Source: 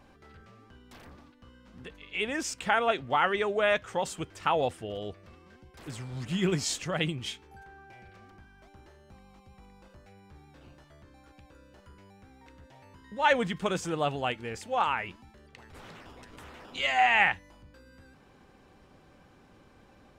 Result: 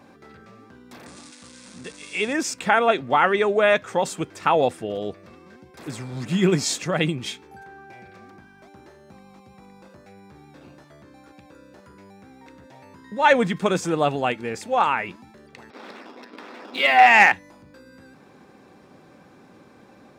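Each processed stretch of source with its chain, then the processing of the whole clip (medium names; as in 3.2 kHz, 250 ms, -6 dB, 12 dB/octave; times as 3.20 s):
1.06–2.33 s: zero-crossing glitches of -35.5 dBFS + elliptic low-pass 9.2 kHz
15.70–17.32 s: brick-wall FIR band-pass 190–5700 Hz + waveshaping leveller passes 1
whole clip: high-pass 190 Hz 12 dB/octave; bass shelf 340 Hz +6.5 dB; band-stop 3 kHz, Q 9.4; trim +6.5 dB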